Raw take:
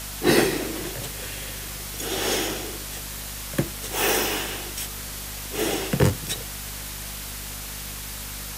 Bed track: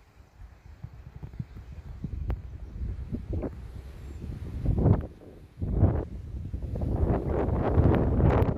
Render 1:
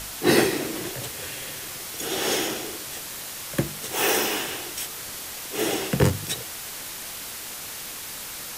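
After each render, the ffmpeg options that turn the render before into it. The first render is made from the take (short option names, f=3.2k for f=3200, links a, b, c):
-af "bandreject=f=50:t=h:w=4,bandreject=f=100:t=h:w=4,bandreject=f=150:t=h:w=4,bandreject=f=200:t=h:w=4,bandreject=f=250:t=h:w=4"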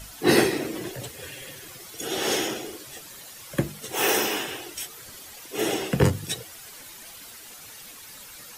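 -af "afftdn=nr=11:nf=-36"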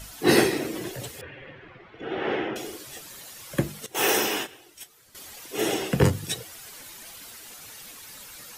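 -filter_complex "[0:a]asettb=1/sr,asplit=3[a][b][c];[a]atrim=end=1.214[d];[b]atrim=start=1.21:end=2.56,asetpts=PTS-STARTPTS,afade=t=in:d=0.004:c=qsin,afade=t=out:st=1.346:d=0.004:c=qsin,lowpass=f=2.4k:w=0.5412,lowpass=f=2.4k:w=1.3066[e];[c]atrim=start=2.556[f];[d][e]acrossfade=d=0.004:c1=hsin:c2=qsin[g];[g][f]acrossfade=d=0.004:c1=qsin:c2=hsin,asettb=1/sr,asplit=3[h][i][j];[h]atrim=end=3.864[k];[i]atrim=start=3.86:end=5.15,asetpts=PTS-STARTPTS,afade=t=in:d=0.004:c=qsin,afade=t=out:st=1.286:d=0.004:c=qsin,agate=range=-14dB:threshold=-32dB:ratio=16:release=100:detection=peak[l];[j]atrim=start=5.146[m];[k][l]acrossfade=d=0.004:c1=hsin:c2=qsin[n];[n][m]acrossfade=d=0.004:c1=qsin:c2=hsin"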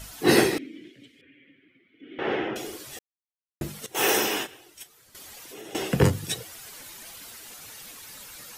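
-filter_complex "[0:a]asettb=1/sr,asplit=3[a][b][c];[a]atrim=end=0.584[d];[b]atrim=start=0.58:end=2.19,asetpts=PTS-STARTPTS,afade=t=in:d=0.004:c=qsin,afade=t=out:st=1.606:d=0.004:c=qsin,asplit=3[e][f][g];[e]bandpass=f=270:t=q:w=8,volume=0dB[h];[f]bandpass=f=2.29k:t=q:w=8,volume=-6dB[i];[g]bandpass=f=3.01k:t=q:w=8,volume=-9dB[j];[h][i][j]amix=inputs=3:normalize=0[k];[c]atrim=start=2.186[l];[d][k]acrossfade=d=0.004:c1=hsin:c2=qsin[m];[m][l]acrossfade=d=0.004:c1=qsin:c2=hsin,asettb=1/sr,asplit=3[n][o][p];[n]atrim=end=4.824[q];[o]atrim=start=4.82:end=5.75,asetpts=PTS-STARTPTS,afade=t=in:d=0.004:c=qsin,afade=t=out:st=0.926:d=0.004:c=qsin,acompressor=threshold=-40dB:ratio=6:attack=3.2:release=140:knee=1:detection=peak[r];[p]atrim=start=5.746[s];[q][r]acrossfade=d=0.004:c1=hsin:c2=qsin[t];[t][s]acrossfade=d=0.004:c1=qsin:c2=hsin,asplit=3[u][v][w];[u]atrim=end=2.99,asetpts=PTS-STARTPTS,afade=t=out:st=2.986:d=0.004:c=hsin[x];[v]atrim=start=2.99:end=3.61,asetpts=PTS-STARTPTS,volume=0[y];[w]atrim=start=3.61,asetpts=PTS-STARTPTS,afade=t=in:d=0.004:c=hsin[z];[x][y][z]concat=n=3:v=0:a=1"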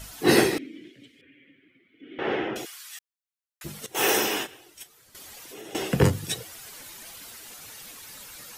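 -filter_complex "[0:a]asplit=3[a][b][c];[a]afade=t=out:st=2.64:d=0.02[d];[b]highpass=f=1.2k:w=0.5412,highpass=f=1.2k:w=1.3066,afade=t=in:st=2.64:d=0.02,afade=t=out:st=3.64:d=0.02[e];[c]afade=t=in:st=3.64:d=0.02[f];[d][e][f]amix=inputs=3:normalize=0"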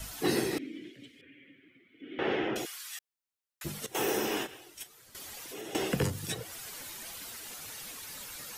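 -filter_complex "[0:a]acrossover=split=380|3600[a][b][c];[b]alimiter=limit=-19.5dB:level=0:latency=1:release=331[d];[a][d][c]amix=inputs=3:normalize=0,acrossover=split=580|2100[e][f][g];[e]acompressor=threshold=-29dB:ratio=4[h];[f]acompressor=threshold=-37dB:ratio=4[i];[g]acompressor=threshold=-37dB:ratio=4[j];[h][i][j]amix=inputs=3:normalize=0"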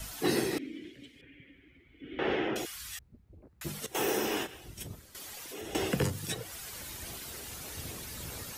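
-filter_complex "[1:a]volume=-23.5dB[a];[0:a][a]amix=inputs=2:normalize=0"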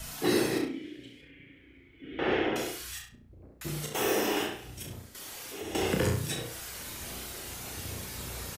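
-filter_complex "[0:a]asplit=2[a][b];[b]adelay=33,volume=-5dB[c];[a][c]amix=inputs=2:normalize=0,asplit=2[d][e];[e]adelay=67,lowpass=f=3.6k:p=1,volume=-3dB,asplit=2[f][g];[g]adelay=67,lowpass=f=3.6k:p=1,volume=0.35,asplit=2[h][i];[i]adelay=67,lowpass=f=3.6k:p=1,volume=0.35,asplit=2[j][k];[k]adelay=67,lowpass=f=3.6k:p=1,volume=0.35,asplit=2[l][m];[m]adelay=67,lowpass=f=3.6k:p=1,volume=0.35[n];[d][f][h][j][l][n]amix=inputs=6:normalize=0"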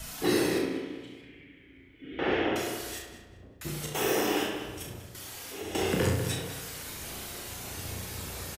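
-filter_complex "[0:a]asplit=2[a][b];[b]adelay=44,volume=-11.5dB[c];[a][c]amix=inputs=2:normalize=0,asplit=2[d][e];[e]adelay=194,lowpass=f=3.2k:p=1,volume=-8dB,asplit=2[f][g];[g]adelay=194,lowpass=f=3.2k:p=1,volume=0.43,asplit=2[h][i];[i]adelay=194,lowpass=f=3.2k:p=1,volume=0.43,asplit=2[j][k];[k]adelay=194,lowpass=f=3.2k:p=1,volume=0.43,asplit=2[l][m];[m]adelay=194,lowpass=f=3.2k:p=1,volume=0.43[n];[d][f][h][j][l][n]amix=inputs=6:normalize=0"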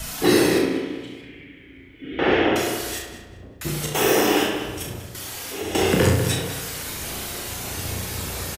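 -af "volume=9dB"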